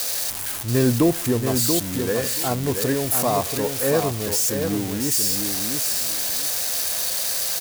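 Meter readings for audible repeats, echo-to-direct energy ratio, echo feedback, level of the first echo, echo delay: 2, −6.0 dB, 18%, −6.0 dB, 683 ms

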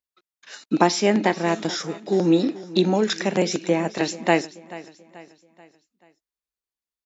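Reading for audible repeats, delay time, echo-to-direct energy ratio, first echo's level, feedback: 3, 434 ms, −17.0 dB, −18.0 dB, 45%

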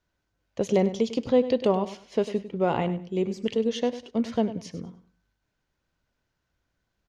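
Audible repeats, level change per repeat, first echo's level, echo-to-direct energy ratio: 2, −13.0 dB, −13.5 dB, −13.5 dB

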